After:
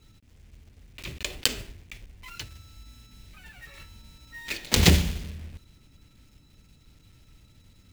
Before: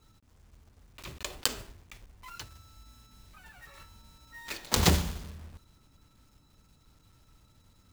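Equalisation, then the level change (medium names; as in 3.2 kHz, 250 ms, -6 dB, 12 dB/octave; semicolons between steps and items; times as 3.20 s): tilt shelf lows +8 dB, about 1.2 kHz; resonant high shelf 1.6 kHz +12 dB, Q 1.5; -1.5 dB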